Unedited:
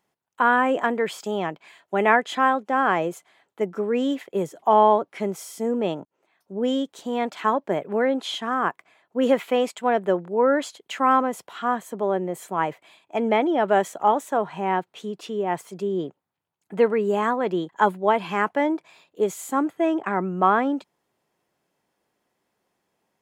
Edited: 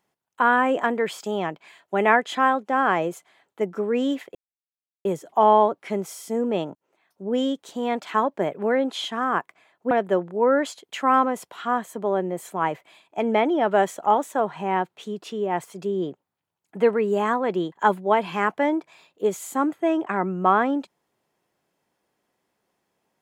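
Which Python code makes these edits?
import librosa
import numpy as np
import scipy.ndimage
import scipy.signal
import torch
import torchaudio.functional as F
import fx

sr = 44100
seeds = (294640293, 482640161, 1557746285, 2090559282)

y = fx.edit(x, sr, fx.insert_silence(at_s=4.35, length_s=0.7),
    fx.cut(start_s=9.21, length_s=0.67), tone=tone)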